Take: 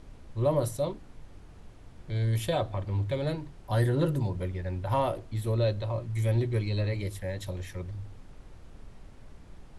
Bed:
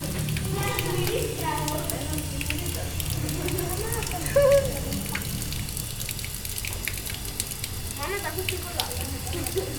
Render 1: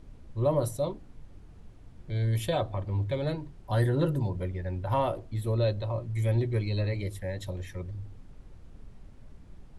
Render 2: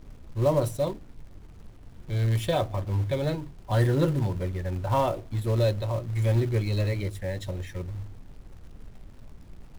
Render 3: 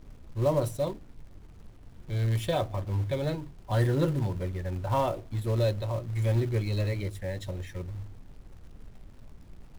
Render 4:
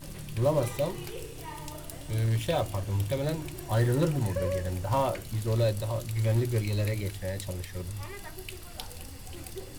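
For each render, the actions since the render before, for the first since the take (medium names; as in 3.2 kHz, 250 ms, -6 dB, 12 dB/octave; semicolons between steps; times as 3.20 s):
noise reduction 6 dB, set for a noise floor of -50 dBFS
median filter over 3 samples; in parallel at -8.5 dB: companded quantiser 4-bit
trim -2.5 dB
add bed -13.5 dB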